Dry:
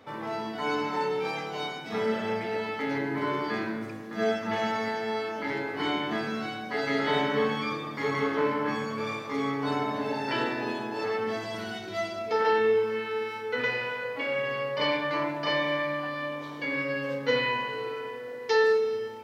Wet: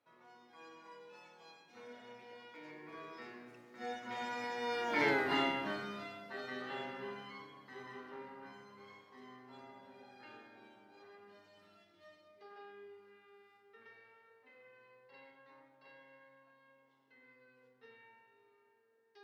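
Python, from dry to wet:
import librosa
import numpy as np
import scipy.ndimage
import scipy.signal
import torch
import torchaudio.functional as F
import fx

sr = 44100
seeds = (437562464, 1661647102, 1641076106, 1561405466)

y = fx.doppler_pass(x, sr, speed_mps=31, closest_m=5.7, pass_at_s=5.11)
y = fx.low_shelf(y, sr, hz=340.0, db=-6.5)
y = F.gain(torch.from_numpy(y), 3.0).numpy()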